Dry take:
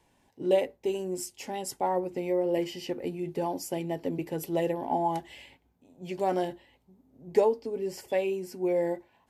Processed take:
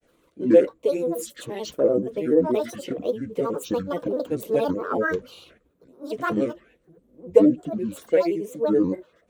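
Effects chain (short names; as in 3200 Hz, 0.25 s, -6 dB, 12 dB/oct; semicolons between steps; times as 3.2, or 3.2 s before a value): grains, grains 21/s, spray 17 ms, pitch spread up and down by 12 st; thirty-one-band EQ 100 Hz -10 dB, 315 Hz +5 dB, 500 Hz +10 dB, 800 Hz -9 dB, 5000 Hz -7 dB; gain +4 dB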